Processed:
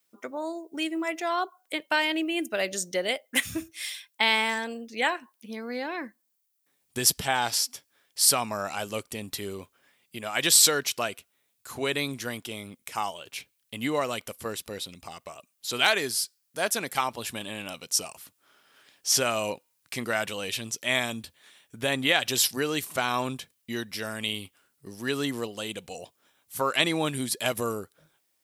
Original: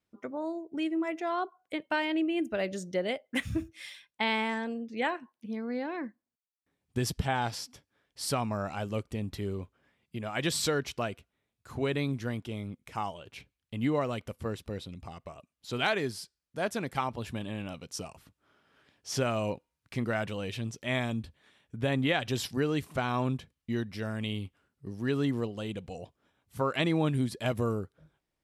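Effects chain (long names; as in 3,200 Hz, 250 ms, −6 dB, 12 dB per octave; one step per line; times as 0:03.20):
RIAA equalisation recording
level +4.5 dB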